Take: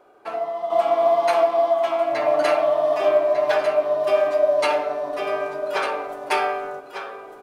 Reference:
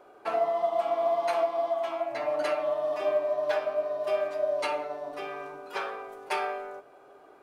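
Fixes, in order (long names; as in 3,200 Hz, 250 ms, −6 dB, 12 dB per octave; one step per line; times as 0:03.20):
echo removal 1,199 ms −8 dB
level correction −8.5 dB, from 0:00.70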